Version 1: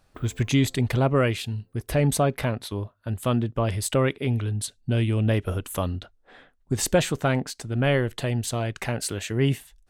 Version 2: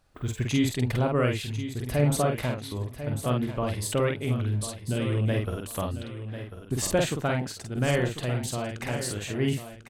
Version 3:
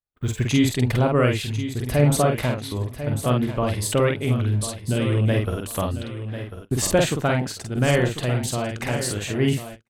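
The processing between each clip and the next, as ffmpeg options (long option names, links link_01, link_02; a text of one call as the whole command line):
ffmpeg -i in.wav -filter_complex "[0:a]asplit=2[link_01][link_02];[link_02]adelay=48,volume=-3.5dB[link_03];[link_01][link_03]amix=inputs=2:normalize=0,asplit=2[link_04][link_05];[link_05]aecho=0:1:1045|2090|3135:0.282|0.0761|0.0205[link_06];[link_04][link_06]amix=inputs=2:normalize=0,volume=-4.5dB" out.wav
ffmpeg -i in.wav -af "agate=range=-36dB:threshold=-42dB:ratio=16:detection=peak,volume=5.5dB" out.wav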